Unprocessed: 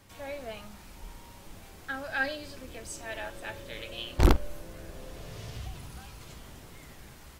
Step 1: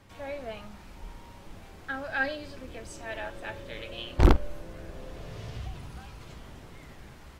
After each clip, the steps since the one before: low-pass 3 kHz 6 dB/octave; trim +2 dB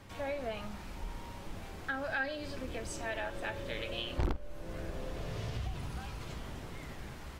compression 3:1, threshold -37 dBFS, peak gain reduction 19 dB; trim +3 dB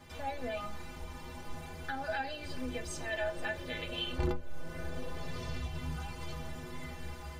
inharmonic resonator 74 Hz, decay 0.42 s, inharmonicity 0.03; trim +11 dB

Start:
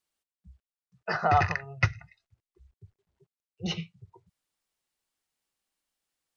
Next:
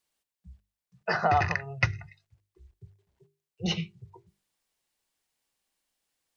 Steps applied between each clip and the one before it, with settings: peaking EQ 1.3 kHz -4.5 dB 0.22 oct; hum notches 50/100/150/200/250/300/350/400 Hz; compression 2:1, threshold -27 dBFS, peak gain reduction 5.5 dB; trim +4 dB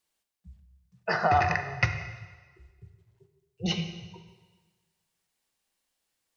reverberation RT60 1.4 s, pre-delay 4 ms, DRR 6.5 dB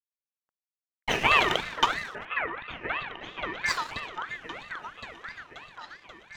crossover distortion -40.5 dBFS; delay with an opening low-pass 533 ms, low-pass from 400 Hz, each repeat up 1 oct, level -6 dB; ring modulator with a swept carrier 1.5 kHz, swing 30%, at 3 Hz; trim +5 dB

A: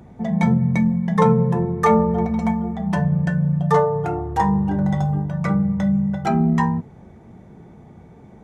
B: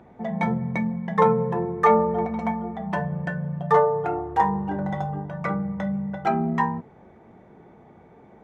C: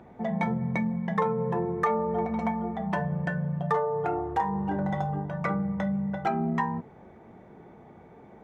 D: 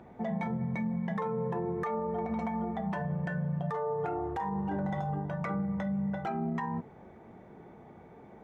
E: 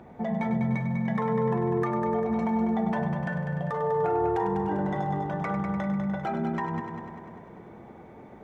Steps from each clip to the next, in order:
tone controls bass -12 dB, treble -14 dB
compression 4:1, threshold -24 dBFS, peak gain reduction 10 dB
peak limiter -24 dBFS, peak gain reduction 10.5 dB; trim -1.5 dB
multi-head delay 99 ms, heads first and second, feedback 63%, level -9 dB; trim +3.5 dB

